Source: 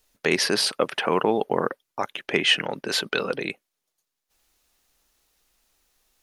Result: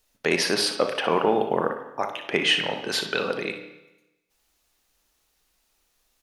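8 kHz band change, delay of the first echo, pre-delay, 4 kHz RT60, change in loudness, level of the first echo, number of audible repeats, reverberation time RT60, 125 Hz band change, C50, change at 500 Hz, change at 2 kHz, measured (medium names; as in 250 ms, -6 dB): -1.5 dB, 59 ms, 27 ms, 0.95 s, 0.0 dB, -11.5 dB, 1, 0.95 s, -1.0 dB, 7.0 dB, +0.5 dB, -0.5 dB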